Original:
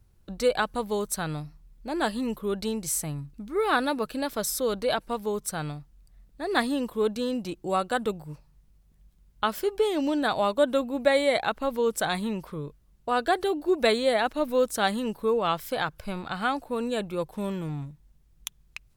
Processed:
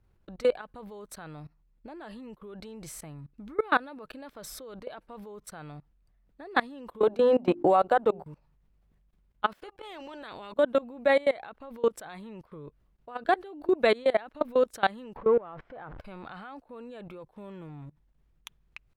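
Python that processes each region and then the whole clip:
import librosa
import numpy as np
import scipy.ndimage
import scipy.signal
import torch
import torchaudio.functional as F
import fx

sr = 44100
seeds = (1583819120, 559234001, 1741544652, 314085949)

y = fx.chain(x, sr, fx.peak_eq(hz=710.0, db=11.0, octaves=1.5),
    fx.hum_notches(base_hz=50, count=8),
    fx.band_squash(depth_pct=100), at=(7.03, 8.23))
y = fx.spec_clip(y, sr, under_db=17, at=(9.56, 10.51), fade=0.02)
y = fx.level_steps(y, sr, step_db=20, at=(9.56, 10.51), fade=0.02)
y = fx.chain(y, sr, fx.zero_step(step_db=-31.0),
    fx.lowpass(hz=1400.0, slope=12), at=(15.16, 16.0))
y = fx.bass_treble(y, sr, bass_db=-5, treble_db=-15)
y = fx.level_steps(y, sr, step_db=23)
y = y * librosa.db_to_amplitude(3.0)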